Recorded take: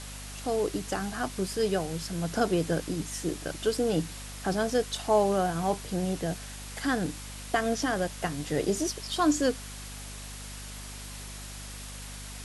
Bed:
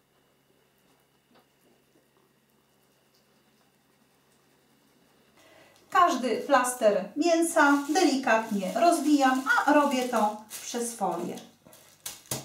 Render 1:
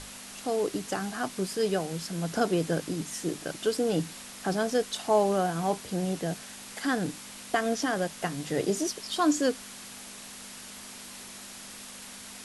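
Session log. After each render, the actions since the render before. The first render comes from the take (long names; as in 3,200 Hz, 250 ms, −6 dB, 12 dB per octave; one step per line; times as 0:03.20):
mains-hum notches 50/100/150 Hz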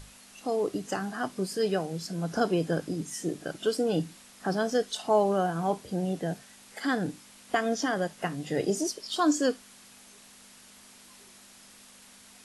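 noise reduction from a noise print 9 dB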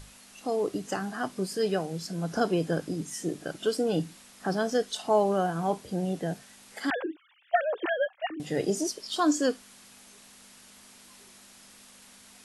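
0:06.90–0:08.40: three sine waves on the formant tracks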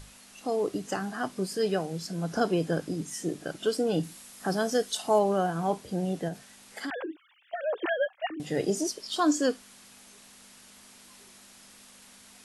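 0:04.03–0:05.19: high-shelf EQ 8,400 Hz +11.5 dB
0:06.28–0:07.64: downward compressor, threshold −31 dBFS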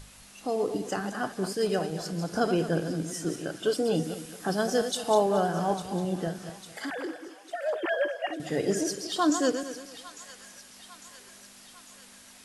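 feedback delay that plays each chunk backwards 112 ms, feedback 52%, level −8 dB
delay with a high-pass on its return 851 ms, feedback 59%, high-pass 1,400 Hz, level −13 dB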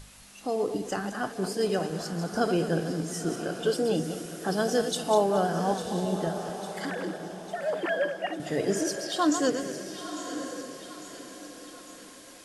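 feedback delay with all-pass diffusion 1,012 ms, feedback 40%, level −10 dB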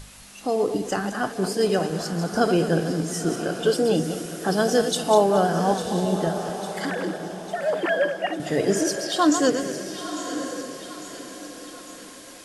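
level +5.5 dB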